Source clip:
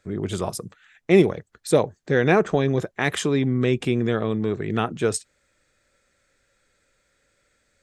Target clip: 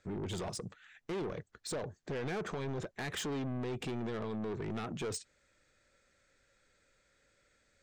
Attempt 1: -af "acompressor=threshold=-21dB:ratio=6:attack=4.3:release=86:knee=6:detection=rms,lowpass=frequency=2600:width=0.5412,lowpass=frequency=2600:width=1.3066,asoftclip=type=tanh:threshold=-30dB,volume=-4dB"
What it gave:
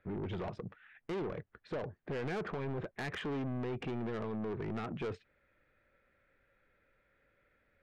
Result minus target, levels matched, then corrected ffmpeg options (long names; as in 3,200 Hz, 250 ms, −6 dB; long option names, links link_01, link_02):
8,000 Hz band −19.0 dB
-af "acompressor=threshold=-21dB:ratio=6:attack=4.3:release=86:knee=6:detection=rms,lowpass=frequency=8000:width=0.5412,lowpass=frequency=8000:width=1.3066,asoftclip=type=tanh:threshold=-30dB,volume=-4dB"